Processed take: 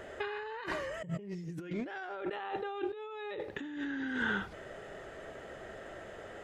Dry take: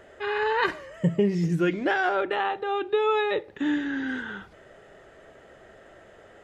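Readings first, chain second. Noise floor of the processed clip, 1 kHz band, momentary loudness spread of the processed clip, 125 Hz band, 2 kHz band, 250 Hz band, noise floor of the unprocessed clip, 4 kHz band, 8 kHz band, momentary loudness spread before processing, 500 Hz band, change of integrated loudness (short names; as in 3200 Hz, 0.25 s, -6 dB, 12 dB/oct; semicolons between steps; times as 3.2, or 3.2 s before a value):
-48 dBFS, -13.5 dB, 13 LU, -14.0 dB, -9.0 dB, -11.5 dB, -52 dBFS, -11.0 dB, n/a, 7 LU, -13.0 dB, -13.5 dB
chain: negative-ratio compressor -35 dBFS, ratio -1; gain -4 dB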